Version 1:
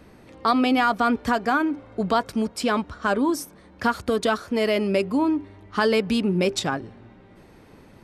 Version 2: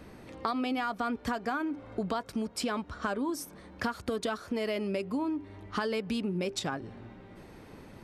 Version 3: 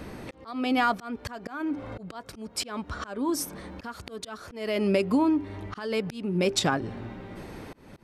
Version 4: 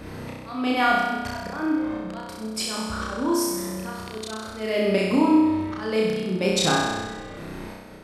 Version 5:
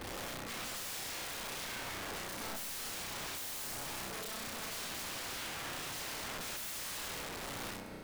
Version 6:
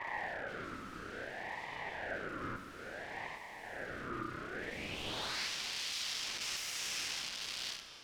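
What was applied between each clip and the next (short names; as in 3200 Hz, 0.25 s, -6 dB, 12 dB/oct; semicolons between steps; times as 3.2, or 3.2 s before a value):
compressor 4:1, threshold -31 dBFS, peak gain reduction 13 dB
auto swell 0.369 s; gain +9 dB
flutter echo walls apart 5.5 m, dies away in 1.3 s
compressor 2:1, threshold -30 dBFS, peak gain reduction 9.5 dB; wrapped overs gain 33 dB; resonator 56 Hz, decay 2 s, mix 60%; gain +3 dB
band-pass sweep 500 Hz -> 4100 Hz, 4.51–5.5; ring modulator with a swept carrier 1100 Hz, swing 30%, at 0.59 Hz; gain +13 dB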